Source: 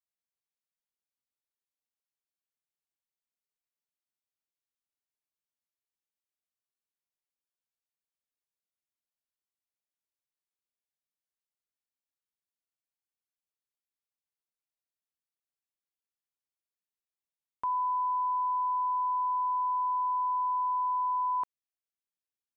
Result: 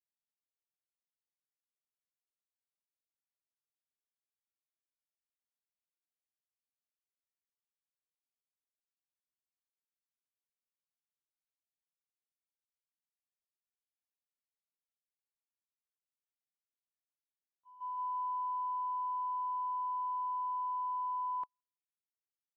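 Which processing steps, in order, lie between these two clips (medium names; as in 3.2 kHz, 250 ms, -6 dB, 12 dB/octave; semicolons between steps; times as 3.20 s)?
on a send: feedback delay 169 ms, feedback 23%, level -12 dB; on the sum: gate -26 dBFS, range -53 dB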